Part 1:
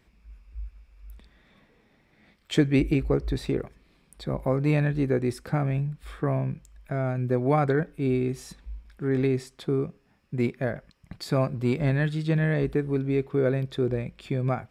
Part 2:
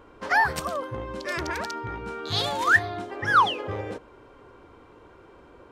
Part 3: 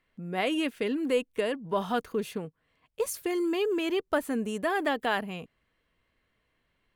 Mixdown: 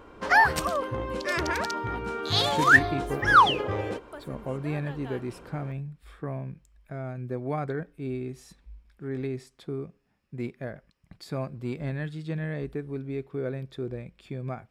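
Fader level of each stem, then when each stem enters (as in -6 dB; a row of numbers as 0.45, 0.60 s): -8.0, +2.0, -16.5 dB; 0.00, 0.00, 0.00 s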